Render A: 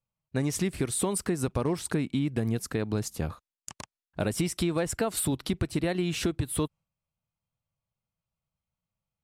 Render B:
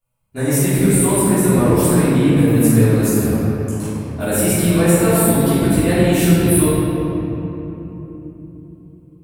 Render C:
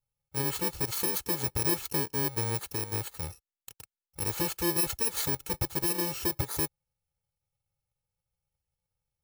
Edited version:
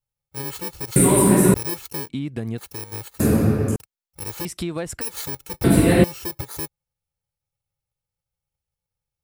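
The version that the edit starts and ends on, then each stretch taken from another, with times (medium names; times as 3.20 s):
C
0.96–1.54 s: from B
2.09–2.58 s: from A
3.20–3.76 s: from B
4.45–5.01 s: from A
5.64–6.04 s: from B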